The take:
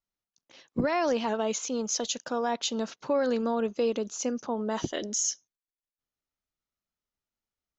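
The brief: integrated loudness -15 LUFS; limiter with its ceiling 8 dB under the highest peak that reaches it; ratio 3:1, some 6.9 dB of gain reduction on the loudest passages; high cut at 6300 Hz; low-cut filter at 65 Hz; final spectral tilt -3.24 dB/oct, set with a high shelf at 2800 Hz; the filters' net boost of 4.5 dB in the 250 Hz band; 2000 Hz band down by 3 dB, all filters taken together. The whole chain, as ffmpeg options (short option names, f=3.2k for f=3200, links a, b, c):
-af "highpass=65,lowpass=6.3k,equalizer=f=250:t=o:g=5,equalizer=f=2k:t=o:g=-7.5,highshelf=f=2.8k:g=8.5,acompressor=threshold=-29dB:ratio=3,volume=20dB,alimiter=limit=-6dB:level=0:latency=1"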